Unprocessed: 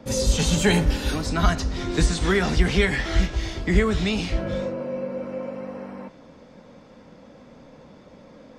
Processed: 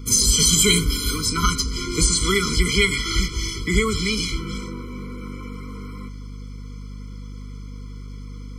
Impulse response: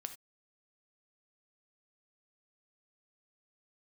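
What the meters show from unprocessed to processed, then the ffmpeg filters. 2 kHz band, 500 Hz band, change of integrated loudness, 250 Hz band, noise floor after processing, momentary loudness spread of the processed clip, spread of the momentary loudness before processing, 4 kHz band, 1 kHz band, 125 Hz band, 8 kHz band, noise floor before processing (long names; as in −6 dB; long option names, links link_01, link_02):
+2.0 dB, −2.5 dB, +4.5 dB, −1.0 dB, −35 dBFS, 23 LU, 13 LU, +8.5 dB, +0.5 dB, −0.5 dB, +13.0 dB, −49 dBFS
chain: -af "crystalizer=i=7.5:c=0,aeval=exprs='val(0)+0.0251*(sin(2*PI*50*n/s)+sin(2*PI*2*50*n/s)/2+sin(2*PI*3*50*n/s)/3+sin(2*PI*4*50*n/s)/4+sin(2*PI*5*50*n/s)/5)':channel_layout=same,afftfilt=real='re*eq(mod(floor(b*sr/1024/490),2),0)':imag='im*eq(mod(floor(b*sr/1024/490),2),0)':win_size=1024:overlap=0.75,volume=-1.5dB"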